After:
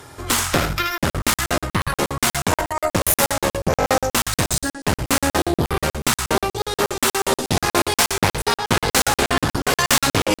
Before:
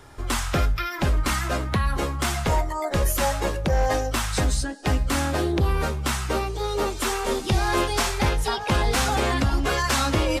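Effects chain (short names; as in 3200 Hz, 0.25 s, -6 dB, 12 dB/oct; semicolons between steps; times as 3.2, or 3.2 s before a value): one-sided fold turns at -21 dBFS; HPF 92 Hz 12 dB/oct; high shelf 6700 Hz +7 dB; reverse; upward compressor, threshold -34 dBFS; reverse; added harmonics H 4 -12 dB, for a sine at -9 dBFS; on a send: echo 79 ms -9 dB; on the sum: crackling interface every 0.12 s, samples 2048, zero, from 0.98; gain +5.5 dB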